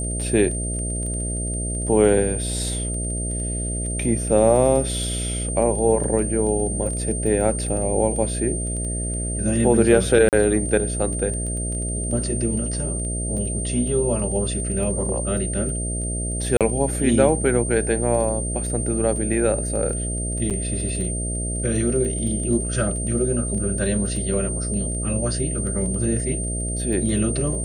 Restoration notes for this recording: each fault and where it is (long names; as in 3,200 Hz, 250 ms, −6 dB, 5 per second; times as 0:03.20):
mains buzz 60 Hz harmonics 11 −27 dBFS
surface crackle 12 per second −29 dBFS
whistle 8,800 Hz −28 dBFS
0:10.29–0:10.33: drop-out 38 ms
0:16.57–0:16.61: drop-out 37 ms
0:20.50–0:20.51: drop-out 7 ms